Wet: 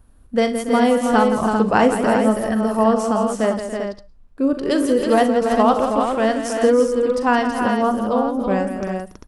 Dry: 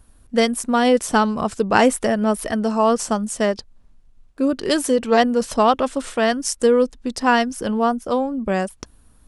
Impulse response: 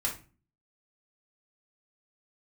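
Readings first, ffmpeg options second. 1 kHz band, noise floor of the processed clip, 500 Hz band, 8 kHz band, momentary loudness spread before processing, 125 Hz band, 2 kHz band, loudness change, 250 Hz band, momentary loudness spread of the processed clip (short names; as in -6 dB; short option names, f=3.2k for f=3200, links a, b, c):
+1.0 dB, -47 dBFS, +2.0 dB, -6.0 dB, 6 LU, n/a, -1.0 dB, +1.0 dB, +2.5 dB, 6 LU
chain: -filter_complex "[0:a]equalizer=f=7.1k:t=o:w=3:g=-8.5,aecho=1:1:41|63|168|283|325|395:0.282|0.168|0.335|0.211|0.473|0.422,asplit=2[a][b];[1:a]atrim=start_sample=2205,atrim=end_sample=3087,adelay=105[c];[b][c]afir=irnorm=-1:irlink=0,volume=-27.5dB[d];[a][d]amix=inputs=2:normalize=0"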